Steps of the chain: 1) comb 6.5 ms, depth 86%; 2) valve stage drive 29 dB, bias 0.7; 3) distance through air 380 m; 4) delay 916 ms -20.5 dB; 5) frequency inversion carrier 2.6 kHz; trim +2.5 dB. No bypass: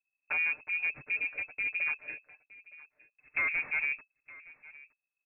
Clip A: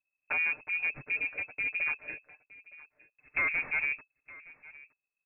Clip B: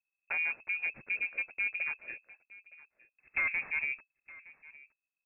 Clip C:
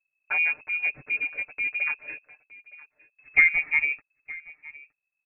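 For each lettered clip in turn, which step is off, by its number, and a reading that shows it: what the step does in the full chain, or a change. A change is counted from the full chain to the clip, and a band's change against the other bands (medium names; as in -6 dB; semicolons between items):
3, 2 kHz band -3.5 dB; 1, crest factor change +1.5 dB; 2, crest factor change +7.5 dB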